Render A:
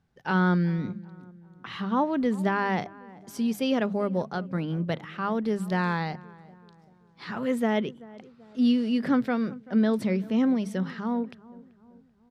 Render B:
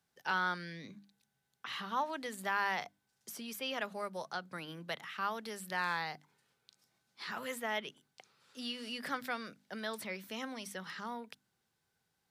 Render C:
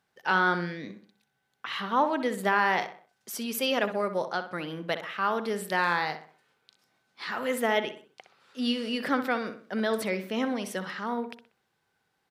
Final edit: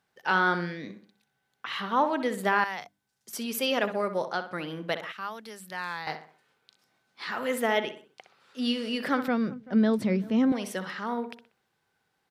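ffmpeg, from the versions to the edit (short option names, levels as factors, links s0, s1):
-filter_complex "[1:a]asplit=2[s0][s1];[2:a]asplit=4[s2][s3][s4][s5];[s2]atrim=end=2.642[s6];[s0]atrim=start=2.638:end=3.332[s7];[s3]atrim=start=3.328:end=5.122[s8];[s1]atrim=start=5.118:end=6.072[s9];[s4]atrim=start=6.068:end=9.282[s10];[0:a]atrim=start=9.278:end=10.522[s11];[s5]atrim=start=10.518[s12];[s6][s7]acrossfade=d=0.004:c1=hsin:c2=hsin[s13];[s13][s8]acrossfade=d=0.004:c1=hsin:c2=hsin[s14];[s14][s9]acrossfade=d=0.004:c1=hsin:c2=hsin[s15];[s15][s10]acrossfade=d=0.004:c1=hsin:c2=hsin[s16];[s16][s11]acrossfade=d=0.004:c1=hsin:c2=hsin[s17];[s17][s12]acrossfade=d=0.004:c1=hsin:c2=hsin"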